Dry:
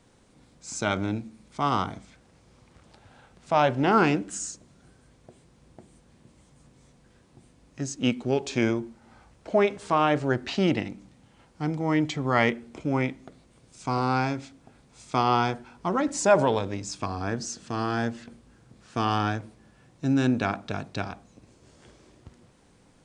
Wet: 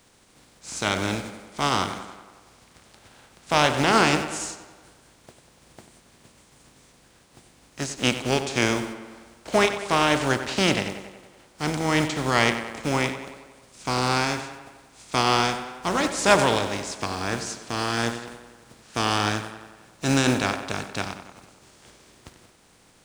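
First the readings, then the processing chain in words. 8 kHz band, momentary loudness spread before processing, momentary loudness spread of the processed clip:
+6.5 dB, 14 LU, 16 LU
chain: compressing power law on the bin magnitudes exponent 0.53
tape delay 94 ms, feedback 66%, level −10 dB, low-pass 4,000 Hz
level +1.5 dB

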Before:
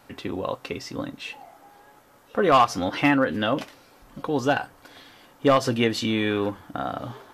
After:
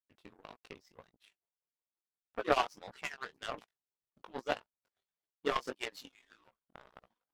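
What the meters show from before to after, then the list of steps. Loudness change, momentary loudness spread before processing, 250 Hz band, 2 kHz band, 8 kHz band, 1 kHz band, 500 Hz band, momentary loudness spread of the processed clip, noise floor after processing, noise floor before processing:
−13.5 dB, 16 LU, −23.5 dB, −14.0 dB, −15.0 dB, −14.5 dB, −15.0 dB, 23 LU, below −85 dBFS, −55 dBFS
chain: harmonic-percussive split with one part muted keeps percussive
chorus effect 1.7 Hz, delay 16 ms, depth 7.4 ms
power curve on the samples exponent 2

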